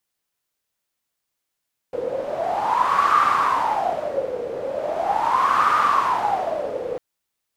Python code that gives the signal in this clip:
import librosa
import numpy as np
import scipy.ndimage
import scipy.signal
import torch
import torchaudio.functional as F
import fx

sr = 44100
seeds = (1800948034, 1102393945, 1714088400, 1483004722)

y = fx.wind(sr, seeds[0], length_s=5.05, low_hz=490.0, high_hz=1200.0, q=11.0, gusts=2, swing_db=10)